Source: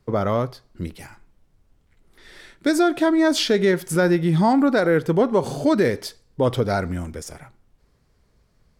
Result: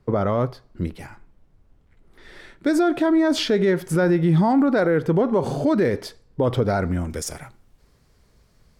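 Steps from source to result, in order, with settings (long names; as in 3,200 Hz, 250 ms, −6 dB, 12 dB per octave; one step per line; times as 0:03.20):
high-shelf EQ 3,000 Hz −10 dB, from 0:07.10 +4 dB
brickwall limiter −15 dBFS, peak gain reduction 6 dB
level +3.5 dB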